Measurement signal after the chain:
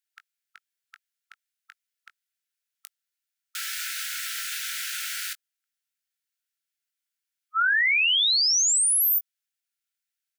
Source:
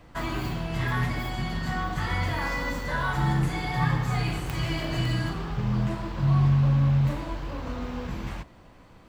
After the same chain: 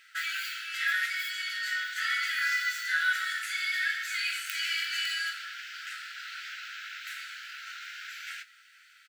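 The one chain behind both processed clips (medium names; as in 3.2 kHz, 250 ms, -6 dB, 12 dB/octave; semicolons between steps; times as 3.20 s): brick-wall FIR high-pass 1.3 kHz; doubling 20 ms -10.5 dB; trim +5 dB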